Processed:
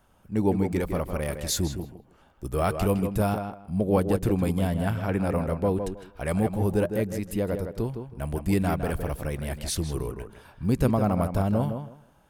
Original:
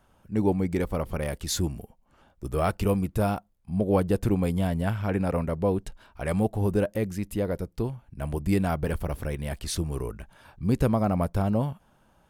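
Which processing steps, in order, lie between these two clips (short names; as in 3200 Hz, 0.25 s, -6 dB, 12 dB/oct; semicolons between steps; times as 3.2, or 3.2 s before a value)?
high shelf 8200 Hz +4.5 dB; on a send: tape echo 0.159 s, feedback 22%, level -6 dB, low-pass 2400 Hz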